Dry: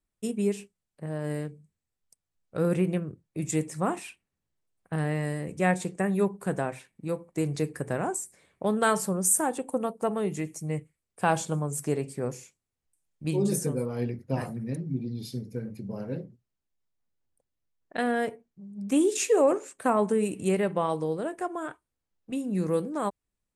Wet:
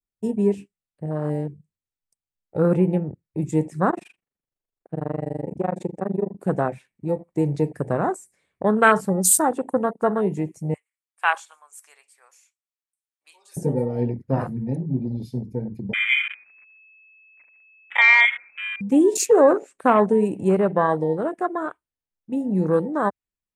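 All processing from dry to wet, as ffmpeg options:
-filter_complex "[0:a]asettb=1/sr,asplit=3[a][b][c];[a]atrim=end=3.904[d];[b]atrim=start=3.9:end=6.35,asetpts=PTS-STARTPTS,afade=t=in:d=0.004:c=qsin,afade=t=out:st=2.446:d=0.004:c=qsin,equalizer=f=520:w=0.4:g=9.5,acompressor=threshold=-28dB:ratio=2.5:attack=3.2:release=140:knee=1:detection=peak,tremolo=f=24:d=0.974[e];[c]atrim=start=6.346[f];[d][e]acrossfade=d=0.004:c1=hsin:c2=qsin[g];[g][f]acrossfade=d=0.004:c1=qsin:c2=hsin,asettb=1/sr,asplit=3[h][i][j];[h]atrim=end=10.744[k];[i]atrim=start=10.74:end=13.57,asetpts=PTS-STARTPTS,afade=t=in:d=0.004:c=qsin,afade=t=out:st=2.826:d=0.004:c=qsin,highpass=f=940:w=0.5412,highpass=f=940:w=1.3066,bandreject=f=4.9k:w=25[l];[j]atrim=start=13.566[m];[k][l]acrossfade=d=0.004:c1=hsin:c2=qsin[n];[n][m]acrossfade=d=0.004:c1=qsin:c2=hsin,asettb=1/sr,asplit=3[o][p][q];[o]atrim=end=15.934[r];[p]atrim=start=15.93:end=18.81,asetpts=PTS-STARTPTS,afade=t=in:d=0.004:c=qsin,afade=t=out:st=2.876:d=0.004:c=qsin,aeval=exprs='val(0)+0.5*0.01*sgn(val(0))':c=same,lowpass=f=2.2k:t=q:w=0.5098,lowpass=f=2.2k:t=q:w=0.6013,lowpass=f=2.2k:t=q:w=0.9,lowpass=f=2.2k:t=q:w=2.563,afreqshift=-2600,aecho=1:1:137:0.133,atrim=end_sample=127008[s];[q]atrim=start=18.806[t];[r][s]acrossfade=d=0.004:c1=hsin:c2=qsin[u];[u][t]acrossfade=d=0.004:c1=qsin:c2=hsin,afwtdn=0.02,adynamicequalizer=threshold=0.00501:dfrequency=2200:dqfactor=0.79:tfrequency=2200:tqfactor=0.79:attack=5:release=100:ratio=0.375:range=3:mode=boostabove:tftype=bell,volume=6.5dB"

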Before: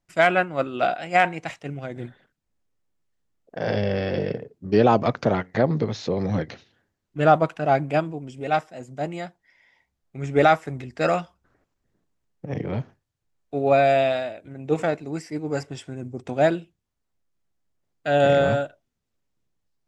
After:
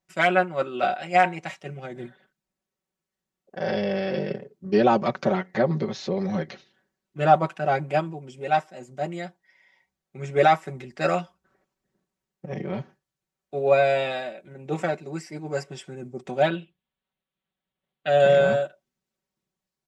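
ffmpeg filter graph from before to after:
-filter_complex "[0:a]asettb=1/sr,asplit=3[a][b][c];[a]atrim=end=16.424[d];[b]atrim=start=16.42:end=18.09,asetpts=PTS-STARTPTS,afade=t=in:d=0.004:c=qsin,afade=t=out:st=1.666:d=0.004:c=qsin,bandreject=f=360:w=7.2,volume=12.5dB,asoftclip=hard,volume=-12.5dB,highshelf=f=4.4k:t=q:w=3:g=-8.5[e];[c]atrim=start=18.086[f];[d][e]acrossfade=d=0.004:c1=hsin:c2=qsin[g];[g][f]acrossfade=d=0.004:c1=qsin:c2=hsin,highpass=f=140:p=1,aecho=1:1:5.3:0.79,volume=-3dB"

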